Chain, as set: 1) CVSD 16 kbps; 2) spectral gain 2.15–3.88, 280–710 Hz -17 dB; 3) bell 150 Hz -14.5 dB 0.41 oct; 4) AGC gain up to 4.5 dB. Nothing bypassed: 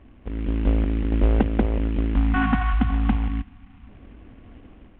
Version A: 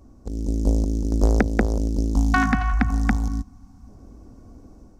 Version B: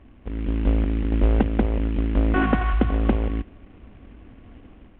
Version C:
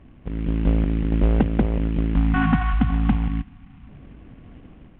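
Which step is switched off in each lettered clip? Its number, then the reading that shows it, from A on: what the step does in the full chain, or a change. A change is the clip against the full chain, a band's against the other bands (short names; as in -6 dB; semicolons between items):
1, 2 kHz band +3.5 dB; 2, 500 Hz band +3.0 dB; 3, 125 Hz band +2.5 dB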